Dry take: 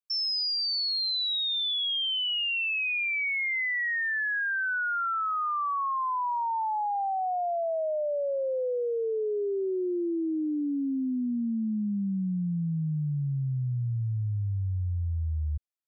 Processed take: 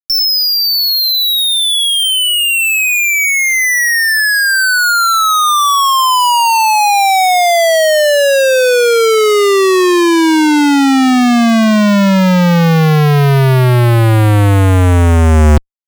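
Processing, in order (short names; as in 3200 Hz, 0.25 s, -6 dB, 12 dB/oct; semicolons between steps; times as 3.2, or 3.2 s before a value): fuzz box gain 61 dB, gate -59 dBFS; vocal rider; gain +3.5 dB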